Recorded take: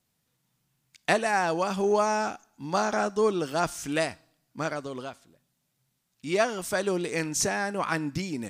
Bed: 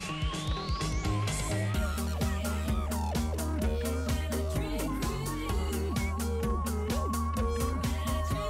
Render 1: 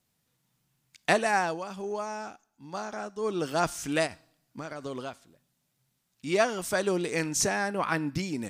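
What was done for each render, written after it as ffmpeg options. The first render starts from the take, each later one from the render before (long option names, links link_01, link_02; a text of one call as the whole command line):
ffmpeg -i in.wav -filter_complex "[0:a]asplit=3[link_01][link_02][link_03];[link_01]afade=type=out:start_time=4.06:duration=0.02[link_04];[link_02]acompressor=threshold=-33dB:ratio=12:attack=3.2:release=140:knee=1:detection=peak,afade=type=in:start_time=4.06:duration=0.02,afade=type=out:start_time=4.83:duration=0.02[link_05];[link_03]afade=type=in:start_time=4.83:duration=0.02[link_06];[link_04][link_05][link_06]amix=inputs=3:normalize=0,asettb=1/sr,asplit=3[link_07][link_08][link_09];[link_07]atrim=end=7.684[link_10];[link_08]atrim=start=7.68:end=8.16,asetpts=PTS-STARTPTS,afade=type=in:duration=0.004:curve=qsin,afade=type=out:start_time=0.476:duration=0.004:curve=qsin,equalizer=frequency=7000:width=2:gain=-10.5[link_11];[link_09]atrim=start=8.156[link_12];[link_10][link_11]acrossfade=duration=0.004:curve1=hsin:curve2=qsin[link_13];[link_13][link_12]acrossfade=duration=0.004:curve1=qsin:curve2=hsin,asplit=3[link_14][link_15][link_16];[link_14]atrim=end=1.61,asetpts=PTS-STARTPTS,afade=type=out:start_time=1.36:duration=0.25:silence=0.316228[link_17];[link_15]atrim=start=1.61:end=3.2,asetpts=PTS-STARTPTS,volume=-10dB[link_18];[link_16]atrim=start=3.2,asetpts=PTS-STARTPTS,afade=type=in:duration=0.25:silence=0.316228[link_19];[link_17][link_18][link_19]concat=n=3:v=0:a=1" out.wav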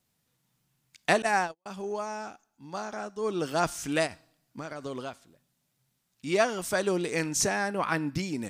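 ffmpeg -i in.wav -filter_complex "[0:a]asettb=1/sr,asplit=3[link_01][link_02][link_03];[link_01]atrim=end=1.224[link_04];[link_02]atrim=start=1.22:end=1.66,asetpts=PTS-STARTPTS,afade=type=in:duration=0.004:curve=qsin,afade=type=out:start_time=0.436:duration=0.004:curve=qsin,agate=range=-50dB:threshold=-29dB:ratio=16:release=100:detection=peak[link_05];[link_03]atrim=start=1.656[link_06];[link_04][link_05]acrossfade=duration=0.004:curve1=hsin:curve2=qsin[link_07];[link_07][link_06]acrossfade=duration=0.004:curve1=qsin:curve2=hsin" out.wav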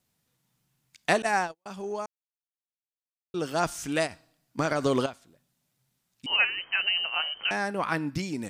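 ffmpeg -i in.wav -filter_complex "[0:a]asettb=1/sr,asplit=3[link_01][link_02][link_03];[link_01]atrim=end=6.264[link_04];[link_02]atrim=start=6.26:end=7.51,asetpts=PTS-STARTPTS,afade=type=in:duration=0.004:curve=qsin,afade=type=out:start_time=1.246:duration=0.004:curve=qsin,lowpass=frequency=2700:width_type=q:width=0.5098,lowpass=frequency=2700:width_type=q:width=0.6013,lowpass=frequency=2700:width_type=q:width=0.9,lowpass=frequency=2700:width_type=q:width=2.563,afreqshift=-3200[link_05];[link_03]atrim=start=7.506[link_06];[link_04][link_05]acrossfade=duration=0.004:curve1=hsin:curve2=qsin[link_07];[link_07][link_06]acrossfade=duration=0.004:curve1=qsin:curve2=hsin,asplit=5[link_08][link_09][link_10][link_11][link_12];[link_08]atrim=end=2.06,asetpts=PTS-STARTPTS,afade=type=out:start_time=2.056:duration=0.004:curve=hsin[link_13];[link_09]atrim=start=2.06:end=3.34,asetpts=PTS-STARTPTS,volume=0[link_14];[link_10]atrim=start=3.34:end=4.592,asetpts=PTS-STARTPTS,afade=type=in:duration=0.004:curve=hsin[link_15];[link_11]atrim=start=4.588:end=5.062,asetpts=PTS-STARTPTS,volume=12dB[link_16];[link_12]atrim=start=5.058[link_17];[link_13][link_14][link_15]concat=n=3:v=0:a=1[link_18];[link_18][link_16]acrossfade=duration=0.004:curve1=hsin:curve2=hsin[link_19];[link_19][link_17]acrossfade=duration=0.004:curve1=hsin:curve2=hsin" out.wav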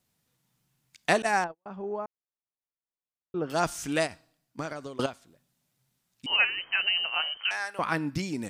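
ffmpeg -i in.wav -filter_complex "[0:a]asettb=1/sr,asplit=3[link_01][link_02][link_03];[link_01]atrim=end=1.444[link_04];[link_02]atrim=start=1.44:end=3.5,asetpts=PTS-STARTPTS,afade=type=in:duration=0.004:curve=qsin,afade=type=out:start_time=2.056:duration=0.004:curve=qsin,lowpass=1400[link_05];[link_03]atrim=start=3.496[link_06];[link_04][link_05]acrossfade=duration=0.004:curve1=hsin:curve2=qsin[link_07];[link_07][link_06]acrossfade=duration=0.004:curve1=qsin:curve2=hsin,asettb=1/sr,asplit=3[link_08][link_09][link_10];[link_08]atrim=end=7.374[link_11];[link_09]atrim=start=7.37:end=7.79,asetpts=PTS-STARTPTS,afade=type=in:duration=0.004:curve=qsin,afade=type=out:start_time=0.416:duration=0.004:curve=qsin,highpass=1100[link_12];[link_10]atrim=start=7.786[link_13];[link_11][link_12]acrossfade=duration=0.004:curve1=hsin:curve2=qsin[link_14];[link_14][link_13]acrossfade=duration=0.004:curve1=qsin:curve2=hsin,asplit=2[link_15][link_16];[link_15]atrim=end=4.99,asetpts=PTS-STARTPTS,afade=type=out:start_time=4.03:duration=0.96:silence=0.0668344[link_17];[link_16]atrim=start=4.99,asetpts=PTS-STARTPTS,afade=type=in:duration=0.004:curve=hsin:silence=0.0668344[link_18];[link_17][link_18]concat=n=2:v=0:a=1" out.wav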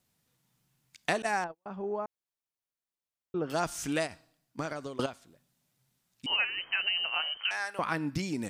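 ffmpeg -i in.wav -af "acompressor=threshold=-28dB:ratio=2.5" out.wav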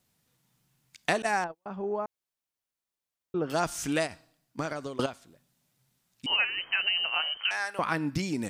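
ffmpeg -i in.wav -af "volume=2.5dB" out.wav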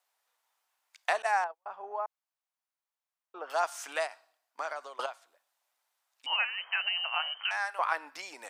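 ffmpeg -i in.wav -af "highpass=frequency=760:width=0.5412,highpass=frequency=760:width=1.3066,tiltshelf=frequency=1400:gain=7" out.wav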